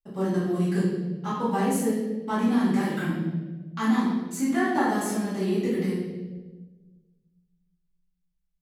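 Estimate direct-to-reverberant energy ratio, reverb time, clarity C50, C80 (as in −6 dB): −12.0 dB, 1.3 s, 0.5 dB, 3.0 dB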